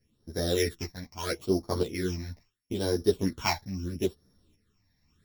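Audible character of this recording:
a buzz of ramps at a fixed pitch in blocks of 8 samples
phaser sweep stages 8, 0.76 Hz, lowest notch 380–2,700 Hz
tremolo saw up 1.1 Hz, depth 60%
a shimmering, thickened sound

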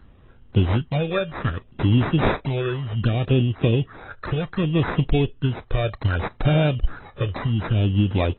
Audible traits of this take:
phaser sweep stages 6, 0.65 Hz, lowest notch 230–2,800 Hz
aliases and images of a low sample rate 3,000 Hz, jitter 0%
AAC

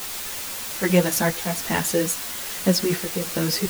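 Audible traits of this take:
chopped level 1.2 Hz, depth 60%, duty 55%
a quantiser's noise floor 6 bits, dither triangular
a shimmering, thickened sound

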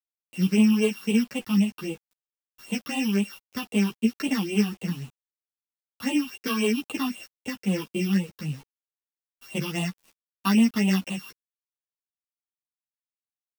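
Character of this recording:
a buzz of ramps at a fixed pitch in blocks of 16 samples
phaser sweep stages 6, 3.8 Hz, lowest notch 530–1,500 Hz
a quantiser's noise floor 8 bits, dither none
a shimmering, thickened sound

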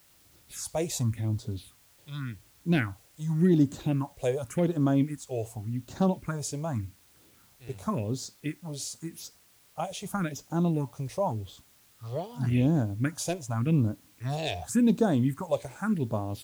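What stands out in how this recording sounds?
phaser sweep stages 4, 0.88 Hz, lowest notch 220–2,400 Hz
a quantiser's noise floor 10 bits, dither triangular

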